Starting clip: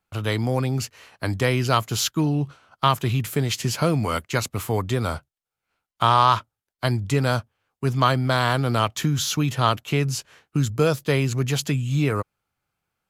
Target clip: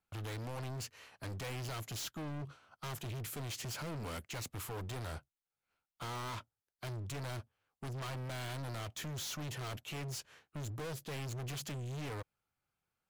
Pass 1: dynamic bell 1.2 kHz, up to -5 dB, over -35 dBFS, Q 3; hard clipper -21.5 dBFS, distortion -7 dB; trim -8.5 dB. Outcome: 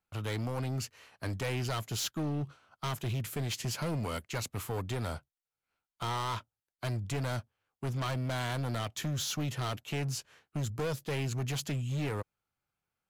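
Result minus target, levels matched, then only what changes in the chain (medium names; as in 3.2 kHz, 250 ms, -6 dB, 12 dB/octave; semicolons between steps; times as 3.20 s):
hard clipper: distortion -5 dB
change: hard clipper -31.5 dBFS, distortion -3 dB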